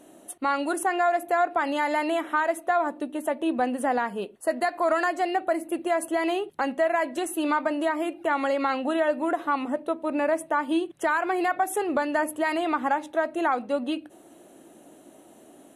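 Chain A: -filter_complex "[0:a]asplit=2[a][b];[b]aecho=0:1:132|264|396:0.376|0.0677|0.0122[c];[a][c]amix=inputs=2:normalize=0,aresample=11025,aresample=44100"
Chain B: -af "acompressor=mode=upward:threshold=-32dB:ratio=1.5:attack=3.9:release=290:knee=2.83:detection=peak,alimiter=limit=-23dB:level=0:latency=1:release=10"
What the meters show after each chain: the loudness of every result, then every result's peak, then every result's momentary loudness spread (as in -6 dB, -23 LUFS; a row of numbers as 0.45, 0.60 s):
-25.5, -31.5 LUFS; -11.5, -23.0 dBFS; 4, 7 LU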